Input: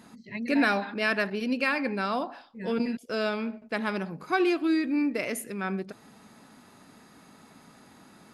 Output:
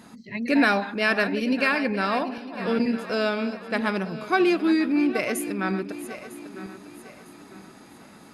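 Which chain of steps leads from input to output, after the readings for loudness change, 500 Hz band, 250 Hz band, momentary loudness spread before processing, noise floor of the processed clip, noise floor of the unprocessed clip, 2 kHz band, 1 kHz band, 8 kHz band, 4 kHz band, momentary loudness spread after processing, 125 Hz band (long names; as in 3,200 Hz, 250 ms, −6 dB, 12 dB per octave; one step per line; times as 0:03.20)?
+4.5 dB, +4.5 dB, +4.5 dB, 10 LU, −49 dBFS, −55 dBFS, +4.5 dB, +4.5 dB, +4.5 dB, +4.5 dB, 17 LU, +4.5 dB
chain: feedback delay that plays each chunk backwards 476 ms, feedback 59%, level −12 dB
level +4 dB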